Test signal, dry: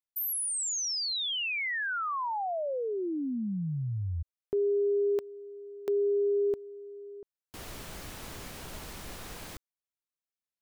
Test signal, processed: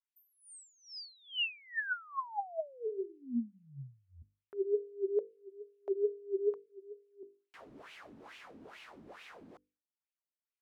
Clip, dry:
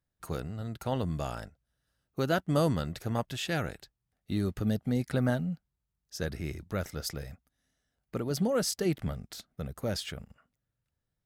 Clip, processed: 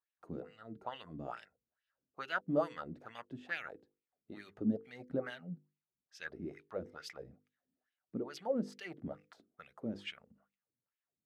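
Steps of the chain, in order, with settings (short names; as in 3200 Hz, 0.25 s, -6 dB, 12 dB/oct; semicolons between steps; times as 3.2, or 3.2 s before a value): wah 2.3 Hz 240–2700 Hz, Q 3.6; notches 50/100/150/200/250/300/350/400/450/500 Hz; gain +2.5 dB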